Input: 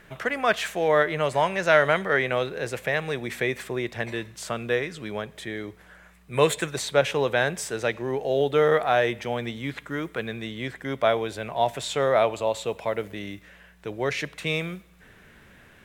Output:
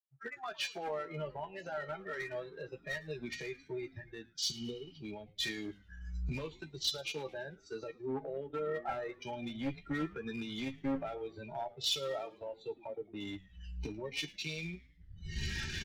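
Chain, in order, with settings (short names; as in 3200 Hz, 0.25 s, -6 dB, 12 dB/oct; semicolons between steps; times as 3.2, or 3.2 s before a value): CVSD 32 kbps; recorder AGC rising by 26 dB/s; spectral noise reduction 29 dB; spectral repair 4.48–4.96, 490–3200 Hz before; limiter -18 dBFS, peak gain reduction 10.5 dB; transient shaper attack -2 dB, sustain -8 dB; compressor 2.5:1, threshold -31 dBFS, peak gain reduction 6.5 dB; resonator 270 Hz, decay 0.26 s, harmonics odd, mix 90%; one-sided clip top -44 dBFS, bottom -35.5 dBFS; doubler 13 ms -8 dB; frequency-shifting echo 0.11 s, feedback 63%, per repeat -110 Hz, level -18.5 dB; three-band expander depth 100%; gain +8.5 dB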